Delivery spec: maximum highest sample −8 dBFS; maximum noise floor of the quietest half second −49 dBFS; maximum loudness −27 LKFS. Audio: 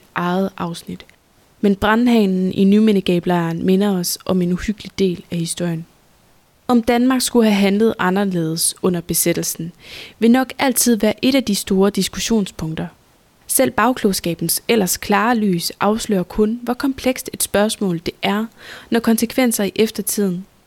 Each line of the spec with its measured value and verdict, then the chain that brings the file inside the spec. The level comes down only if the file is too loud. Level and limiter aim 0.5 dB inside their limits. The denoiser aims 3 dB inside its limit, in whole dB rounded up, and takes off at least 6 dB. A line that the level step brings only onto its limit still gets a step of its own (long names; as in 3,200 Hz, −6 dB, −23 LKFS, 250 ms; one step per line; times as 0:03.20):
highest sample −3.5 dBFS: out of spec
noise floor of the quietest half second −54 dBFS: in spec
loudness −17.5 LKFS: out of spec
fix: level −10 dB